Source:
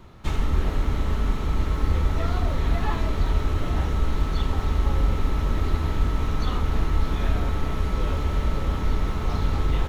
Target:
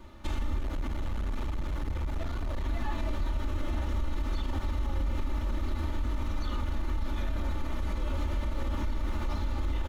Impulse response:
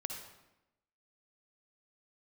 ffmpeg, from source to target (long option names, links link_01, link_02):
-filter_complex "[0:a]aecho=1:1:3.4:0.93,alimiter=limit=-18.5dB:level=0:latency=1:release=64,asettb=1/sr,asplit=3[link_01][link_02][link_03];[link_01]atrim=end=0.594[link_04];[link_02]atrim=start=0.59:end=2.66,asetpts=PTS-STARTPTS,afade=type=in:duration=0.004:curve=qsin,afade=type=out:start_time=2.066:duration=0.004:curve=qsin,volume=23dB,asoftclip=hard,volume=-23dB[link_05];[link_03]atrim=start=2.656[link_06];[link_04][link_05]acrossfade=duration=0.004:curve1=hsin:curve2=qsin[link_07];[link_07][link_06]acrossfade=duration=0.004:curve1=qsin:curve2=hsin,volume=-4.5dB"